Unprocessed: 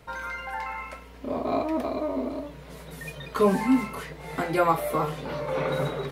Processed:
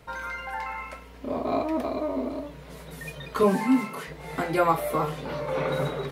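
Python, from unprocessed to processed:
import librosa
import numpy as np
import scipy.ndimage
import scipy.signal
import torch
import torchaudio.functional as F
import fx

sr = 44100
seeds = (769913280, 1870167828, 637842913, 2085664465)

y = fx.highpass(x, sr, hz=140.0, slope=24, at=(3.43, 4.08))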